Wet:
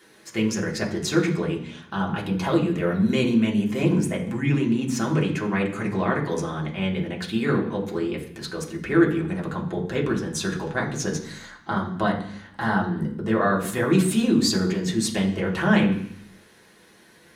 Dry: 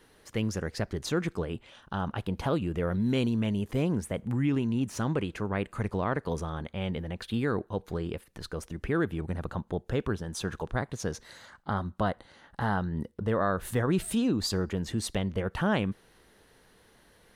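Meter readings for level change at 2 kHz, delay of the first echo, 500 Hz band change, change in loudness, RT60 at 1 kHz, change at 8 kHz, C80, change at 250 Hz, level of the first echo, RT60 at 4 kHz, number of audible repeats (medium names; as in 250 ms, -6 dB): +9.0 dB, no echo, +6.0 dB, +7.0 dB, 0.70 s, +9.0 dB, 12.0 dB, +8.0 dB, no echo, 0.85 s, no echo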